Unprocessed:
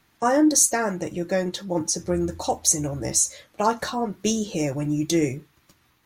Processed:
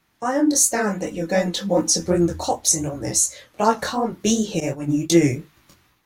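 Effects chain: level rider gain up to 10 dB; chorus 2.7 Hz, delay 17.5 ms, depth 7.4 ms; 0.77–2.07 s: comb 4 ms, depth 67%; 4.60–5.10 s: expander -17 dBFS

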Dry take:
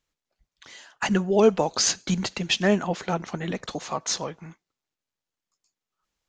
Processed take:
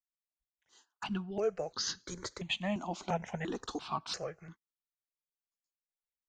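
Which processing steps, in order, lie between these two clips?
gate -45 dBFS, range -18 dB; gain riding within 5 dB 0.5 s; stepped phaser 2.9 Hz 470–2400 Hz; trim -8 dB

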